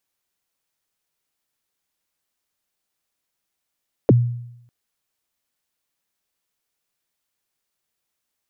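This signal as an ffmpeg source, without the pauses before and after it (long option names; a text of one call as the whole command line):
ffmpeg -f lavfi -i "aevalsrc='0.447*pow(10,-3*t/0.79)*sin(2*PI*(590*0.027/log(120/590)*(exp(log(120/590)*min(t,0.027)/0.027)-1)+120*max(t-0.027,0)))':duration=0.6:sample_rate=44100" out.wav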